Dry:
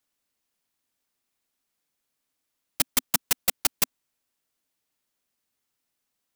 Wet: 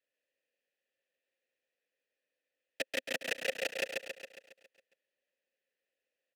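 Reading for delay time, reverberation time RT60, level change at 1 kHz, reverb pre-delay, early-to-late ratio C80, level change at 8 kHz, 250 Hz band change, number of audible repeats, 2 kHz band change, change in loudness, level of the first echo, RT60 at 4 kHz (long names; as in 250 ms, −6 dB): 137 ms, no reverb audible, −12.0 dB, no reverb audible, no reverb audible, −19.0 dB, −10.5 dB, 7, −0.5 dB, −11.5 dB, −3.0 dB, no reverb audible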